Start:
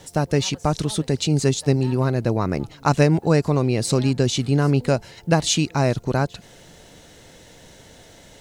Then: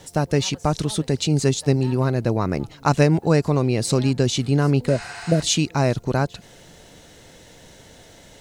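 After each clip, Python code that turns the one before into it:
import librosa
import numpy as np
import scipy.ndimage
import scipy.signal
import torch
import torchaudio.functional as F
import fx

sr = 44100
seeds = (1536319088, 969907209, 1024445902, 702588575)

y = fx.spec_repair(x, sr, seeds[0], start_s=4.92, length_s=0.47, low_hz=670.0, high_hz=9200.0, source='before')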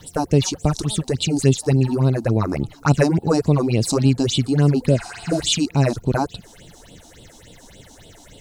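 y = fx.phaser_stages(x, sr, stages=6, low_hz=120.0, high_hz=1800.0, hz=3.5, feedback_pct=40)
y = F.gain(torch.from_numpy(y), 3.5).numpy()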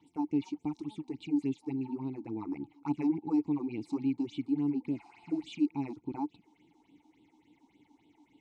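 y = fx.vowel_filter(x, sr, vowel='u')
y = F.gain(torch.from_numpy(y), -5.5).numpy()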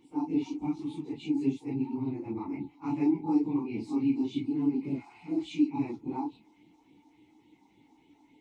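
y = fx.phase_scramble(x, sr, seeds[1], window_ms=100)
y = F.gain(torch.from_numpy(y), 3.0).numpy()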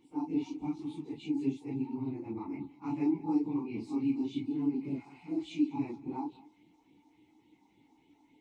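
y = x + 10.0 ** (-20.0 / 20.0) * np.pad(x, (int(198 * sr / 1000.0), 0))[:len(x)]
y = F.gain(torch.from_numpy(y), -3.5).numpy()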